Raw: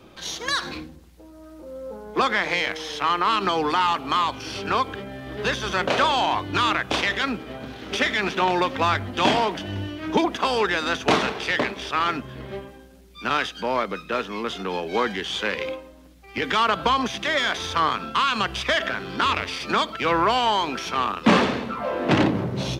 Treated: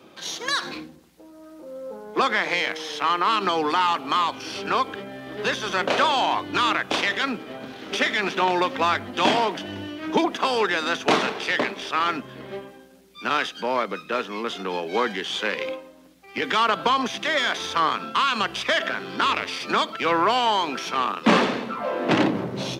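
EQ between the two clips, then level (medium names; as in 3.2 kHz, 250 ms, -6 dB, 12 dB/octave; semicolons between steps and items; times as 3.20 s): high-pass 180 Hz 12 dB/octave; 0.0 dB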